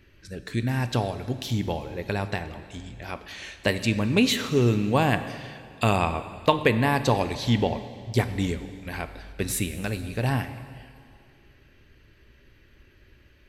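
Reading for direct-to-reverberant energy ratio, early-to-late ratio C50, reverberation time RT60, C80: 11.0 dB, 12.0 dB, 2.3 s, 12.5 dB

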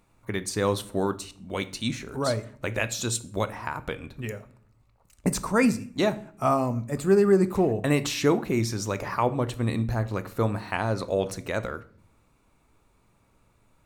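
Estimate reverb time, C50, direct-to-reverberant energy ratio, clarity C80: 0.50 s, 17.5 dB, 12.0 dB, 21.5 dB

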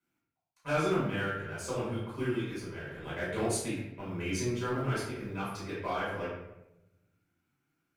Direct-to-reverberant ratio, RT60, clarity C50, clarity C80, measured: -10.0 dB, 0.90 s, 1.0 dB, 4.0 dB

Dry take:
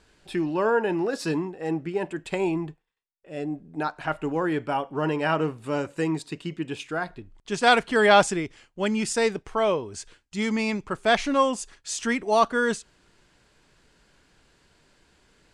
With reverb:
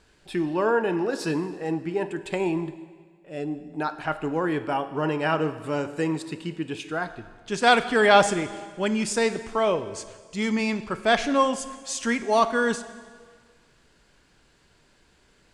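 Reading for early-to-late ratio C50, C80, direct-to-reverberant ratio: 13.0 dB, 14.5 dB, 11.5 dB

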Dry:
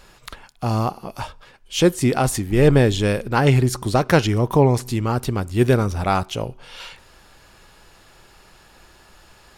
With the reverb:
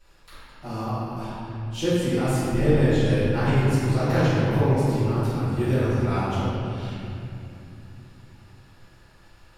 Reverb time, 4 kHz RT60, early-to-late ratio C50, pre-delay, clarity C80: 2.8 s, 1.8 s, -5.0 dB, 3 ms, -2.5 dB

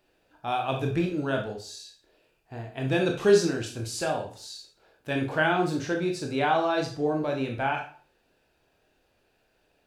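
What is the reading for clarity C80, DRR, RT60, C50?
12.5 dB, 1.5 dB, 0.45 s, 7.5 dB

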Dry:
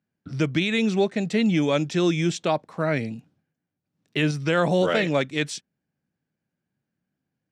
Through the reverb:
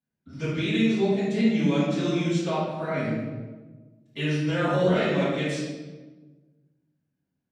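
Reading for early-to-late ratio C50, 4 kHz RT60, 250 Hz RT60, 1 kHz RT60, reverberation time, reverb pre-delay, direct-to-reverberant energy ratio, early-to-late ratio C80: -1.5 dB, 0.85 s, 1.7 s, 1.2 s, 1.3 s, 3 ms, -15.0 dB, 1.5 dB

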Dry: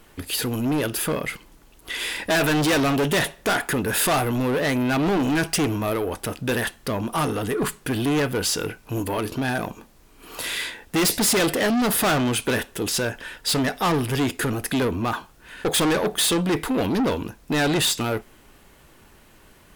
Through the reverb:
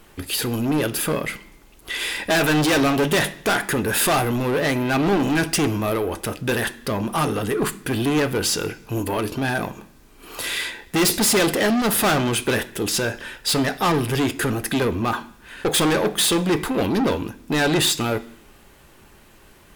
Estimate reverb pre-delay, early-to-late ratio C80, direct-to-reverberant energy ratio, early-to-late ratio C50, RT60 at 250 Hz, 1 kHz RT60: 3 ms, 21.0 dB, 9.0 dB, 17.5 dB, 0.90 s, 0.65 s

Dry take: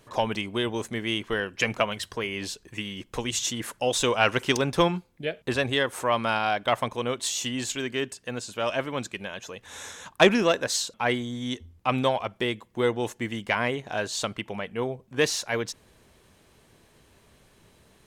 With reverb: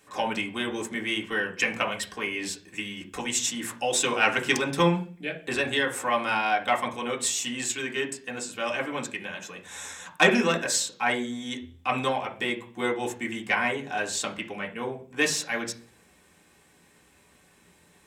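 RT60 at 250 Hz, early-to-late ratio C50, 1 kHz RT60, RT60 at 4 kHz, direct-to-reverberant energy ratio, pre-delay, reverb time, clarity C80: 0.65 s, 12.5 dB, 0.35 s, 0.50 s, -1.0 dB, 3 ms, 0.45 s, 18.0 dB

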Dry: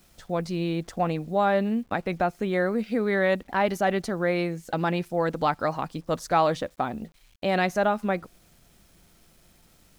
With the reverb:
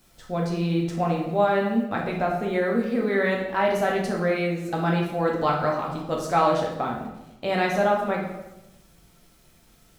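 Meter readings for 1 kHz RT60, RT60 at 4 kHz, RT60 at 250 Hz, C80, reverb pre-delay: 0.95 s, 0.70 s, 1.1 s, 7.0 dB, 7 ms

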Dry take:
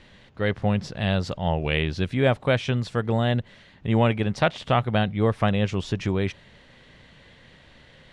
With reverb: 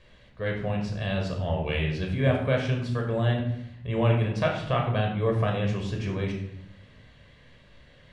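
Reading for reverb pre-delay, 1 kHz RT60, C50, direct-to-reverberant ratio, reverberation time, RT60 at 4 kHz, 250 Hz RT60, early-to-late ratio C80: 16 ms, 0.70 s, 5.5 dB, 0.5 dB, 0.75 s, 0.50 s, 1.1 s, 8.5 dB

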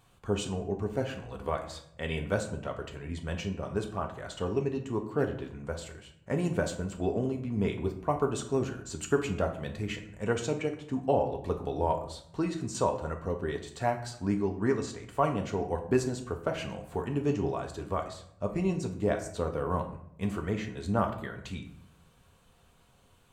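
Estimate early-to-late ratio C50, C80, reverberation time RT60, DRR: 10.0 dB, 13.0 dB, 0.70 s, 3.5 dB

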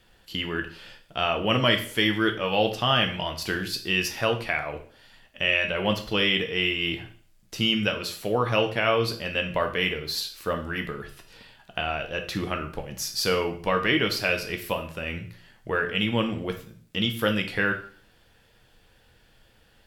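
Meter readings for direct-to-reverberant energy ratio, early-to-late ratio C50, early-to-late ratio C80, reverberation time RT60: 4.0 dB, 10.5 dB, 15.0 dB, 0.50 s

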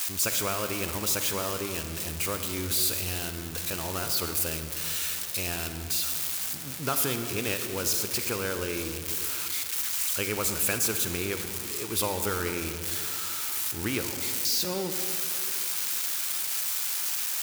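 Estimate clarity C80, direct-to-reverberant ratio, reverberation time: 8.5 dB, 7.0 dB, 2.5 s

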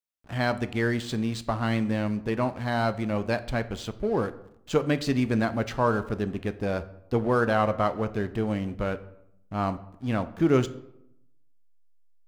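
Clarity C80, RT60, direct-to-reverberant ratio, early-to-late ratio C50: 19.0 dB, 0.80 s, 12.0 dB, 16.0 dB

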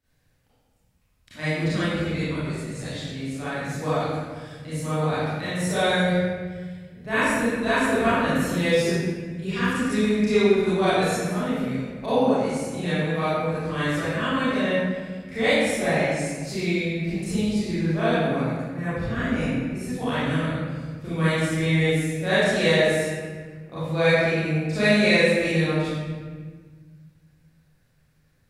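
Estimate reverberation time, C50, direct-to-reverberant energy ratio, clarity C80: 1.5 s, -6.5 dB, -14.5 dB, -1.5 dB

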